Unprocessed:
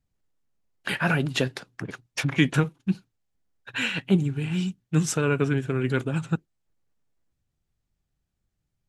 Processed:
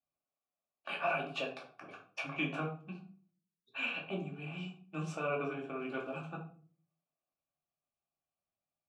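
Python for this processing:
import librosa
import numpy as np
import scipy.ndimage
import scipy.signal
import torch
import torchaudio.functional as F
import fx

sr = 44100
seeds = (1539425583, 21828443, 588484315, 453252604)

y = fx.tilt_eq(x, sr, slope=1.5, at=(0.92, 2.19))
y = fx.spec_erase(y, sr, start_s=3.32, length_s=0.4, low_hz=470.0, high_hz=3400.0)
y = fx.dmg_crackle(y, sr, seeds[0], per_s=100.0, level_db=-33.0, at=(5.79, 6.26), fade=0.02)
y = fx.vowel_filter(y, sr, vowel='a')
y = fx.room_shoebox(y, sr, seeds[1], volume_m3=330.0, walls='furnished', distance_m=2.5)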